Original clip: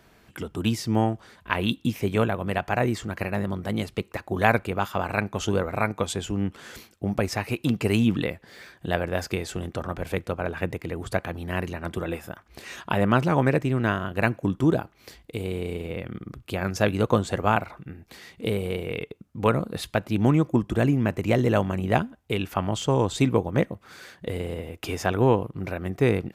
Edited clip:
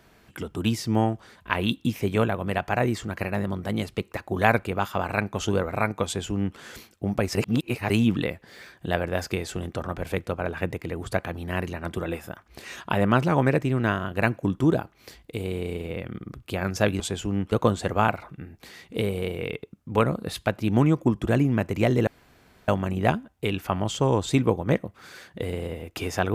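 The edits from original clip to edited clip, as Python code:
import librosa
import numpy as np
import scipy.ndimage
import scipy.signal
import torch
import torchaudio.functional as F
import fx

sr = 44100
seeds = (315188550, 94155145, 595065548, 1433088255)

y = fx.edit(x, sr, fx.duplicate(start_s=6.05, length_s=0.52, to_s=17.0),
    fx.reverse_span(start_s=7.35, length_s=0.55),
    fx.insert_room_tone(at_s=21.55, length_s=0.61), tone=tone)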